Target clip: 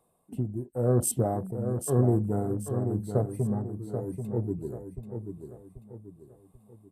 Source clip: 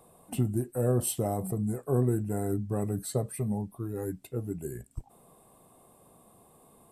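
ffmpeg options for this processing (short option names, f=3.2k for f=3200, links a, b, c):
-af "afwtdn=0.0112,tremolo=f=0.91:d=0.63,aecho=1:1:786|1572|2358|3144:0.422|0.164|0.0641|0.025,volume=4dB"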